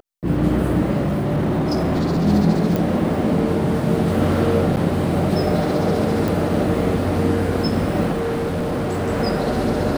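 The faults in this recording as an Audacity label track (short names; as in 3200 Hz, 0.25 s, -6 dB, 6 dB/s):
1.050000	2.260000	clipped -16 dBFS
2.760000	2.760000	pop
4.760000	4.770000	gap 8.7 ms
6.280000	6.280000	pop
8.120000	9.100000	clipped -19 dBFS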